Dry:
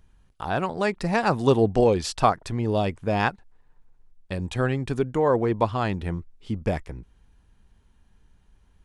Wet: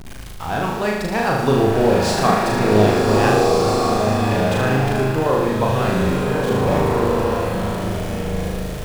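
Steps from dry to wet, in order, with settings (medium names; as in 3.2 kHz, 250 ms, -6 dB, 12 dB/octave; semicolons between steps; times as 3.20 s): jump at every zero crossing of -29.5 dBFS; on a send: flutter echo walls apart 6.5 m, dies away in 1 s; on the sum: swelling reverb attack 1610 ms, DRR -1 dB; trim -1 dB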